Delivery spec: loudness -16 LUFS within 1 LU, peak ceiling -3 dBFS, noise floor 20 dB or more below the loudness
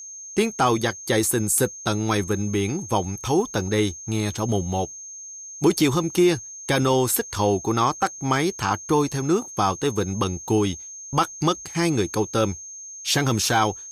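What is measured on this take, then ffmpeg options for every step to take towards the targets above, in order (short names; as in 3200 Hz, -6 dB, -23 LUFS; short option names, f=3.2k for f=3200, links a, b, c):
steady tone 6400 Hz; tone level -36 dBFS; loudness -23.0 LUFS; peak -9.0 dBFS; loudness target -16.0 LUFS
-> -af "bandreject=f=6.4k:w=30"
-af "volume=7dB,alimiter=limit=-3dB:level=0:latency=1"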